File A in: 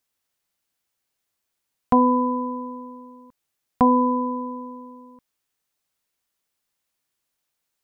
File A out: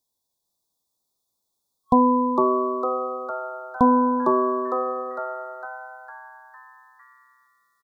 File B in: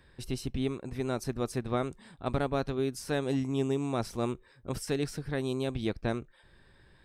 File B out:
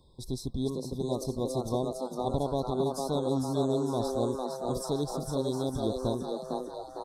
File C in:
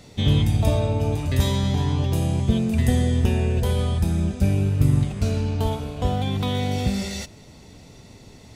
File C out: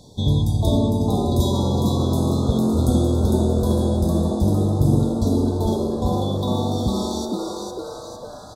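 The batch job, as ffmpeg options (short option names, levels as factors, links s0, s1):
-filter_complex "[0:a]afftfilt=real='re*(1-between(b*sr/4096,1100,3300))':imag='im*(1-between(b*sr/4096,1100,3300))':win_size=4096:overlap=0.75,asplit=8[s0][s1][s2][s3][s4][s5][s6][s7];[s1]adelay=455,afreqshift=130,volume=0.631[s8];[s2]adelay=910,afreqshift=260,volume=0.327[s9];[s3]adelay=1365,afreqshift=390,volume=0.17[s10];[s4]adelay=1820,afreqshift=520,volume=0.0891[s11];[s5]adelay=2275,afreqshift=650,volume=0.0462[s12];[s6]adelay=2730,afreqshift=780,volume=0.024[s13];[s7]adelay=3185,afreqshift=910,volume=0.0124[s14];[s0][s8][s9][s10][s11][s12][s13][s14]amix=inputs=8:normalize=0"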